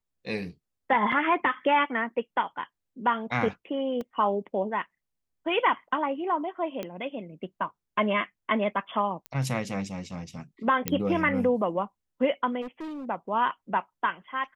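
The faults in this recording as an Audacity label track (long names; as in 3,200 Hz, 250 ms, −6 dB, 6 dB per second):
1.120000	1.120000	drop-out 4.4 ms
4.010000	4.010000	drop-out 2.6 ms
6.830000	6.830000	click −20 dBFS
9.260000	9.260000	click −22 dBFS
10.880000	10.880000	click −9 dBFS
12.610000	13.050000	clipping −34 dBFS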